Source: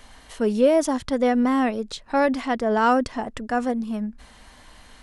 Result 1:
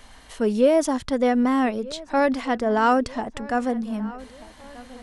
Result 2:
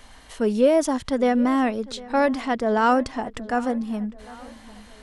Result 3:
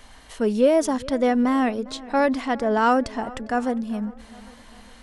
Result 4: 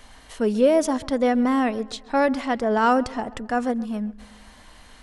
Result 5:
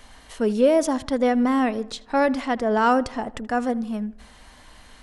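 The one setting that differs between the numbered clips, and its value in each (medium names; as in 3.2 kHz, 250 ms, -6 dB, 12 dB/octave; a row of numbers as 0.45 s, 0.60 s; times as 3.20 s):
filtered feedback delay, time: 1235 ms, 752 ms, 403 ms, 133 ms, 79 ms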